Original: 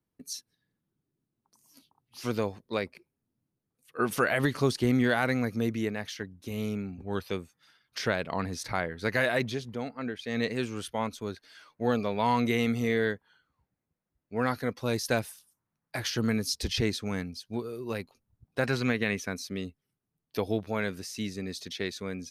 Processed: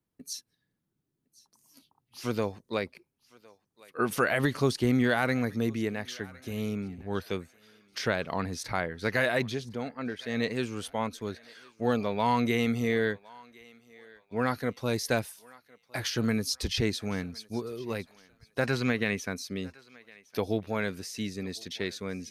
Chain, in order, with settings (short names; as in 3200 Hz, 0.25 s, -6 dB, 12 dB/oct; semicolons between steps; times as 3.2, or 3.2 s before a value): thinning echo 1.06 s, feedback 39%, high-pass 590 Hz, level -21.5 dB